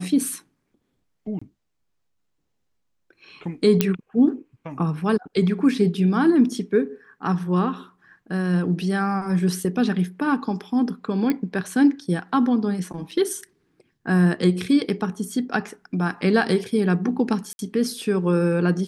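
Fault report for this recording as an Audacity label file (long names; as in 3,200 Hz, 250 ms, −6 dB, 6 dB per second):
1.390000	1.420000	drop-out 25 ms
3.810000	3.810000	click −3 dBFS
11.300000	11.300000	click −11 dBFS
13.110000	13.110000	drop-out 4.4 ms
17.530000	17.590000	drop-out 61 ms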